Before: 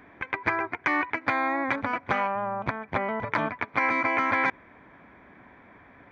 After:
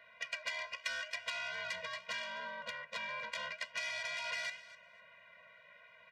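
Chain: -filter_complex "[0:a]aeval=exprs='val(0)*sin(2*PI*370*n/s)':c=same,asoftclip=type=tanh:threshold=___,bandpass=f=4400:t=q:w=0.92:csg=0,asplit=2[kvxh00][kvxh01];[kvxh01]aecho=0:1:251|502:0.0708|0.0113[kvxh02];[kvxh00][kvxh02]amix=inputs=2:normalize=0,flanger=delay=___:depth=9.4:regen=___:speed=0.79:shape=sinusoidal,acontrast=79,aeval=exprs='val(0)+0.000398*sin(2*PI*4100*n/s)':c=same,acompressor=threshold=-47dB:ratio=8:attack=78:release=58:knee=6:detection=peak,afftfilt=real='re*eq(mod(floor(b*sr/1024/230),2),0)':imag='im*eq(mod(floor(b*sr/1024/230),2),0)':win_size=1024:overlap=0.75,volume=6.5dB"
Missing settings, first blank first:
-28dB, 8.1, 76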